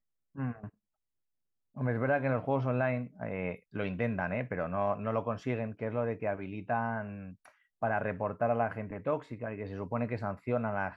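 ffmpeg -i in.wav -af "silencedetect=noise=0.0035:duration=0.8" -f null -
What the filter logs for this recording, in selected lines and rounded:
silence_start: 0.69
silence_end: 1.76 | silence_duration: 1.07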